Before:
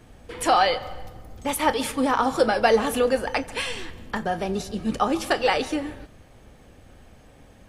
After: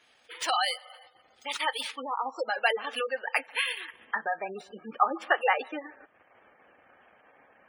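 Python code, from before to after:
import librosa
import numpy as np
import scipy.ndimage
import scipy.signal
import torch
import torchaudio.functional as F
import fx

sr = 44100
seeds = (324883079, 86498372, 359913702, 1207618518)

y = fx.band_shelf(x, sr, hz=2300.0, db=-12.0, octaves=1.7, at=(2.02, 2.5))
y = fx.quant_dither(y, sr, seeds[0], bits=6, dither='none', at=(4.98, 5.55))
y = fx.transient(y, sr, attack_db=0, sustain_db=-8)
y = fx.filter_sweep_bandpass(y, sr, from_hz=3800.0, to_hz=1500.0, start_s=1.48, end_s=5.1, q=0.85)
y = fx.sample_hold(y, sr, seeds[1], rate_hz=13000.0, jitter_pct=0)
y = fx.spec_gate(y, sr, threshold_db=-15, keep='strong')
y = fx.low_shelf(y, sr, hz=180.0, db=-10.5)
y = F.gain(torch.from_numpy(y), 3.0).numpy()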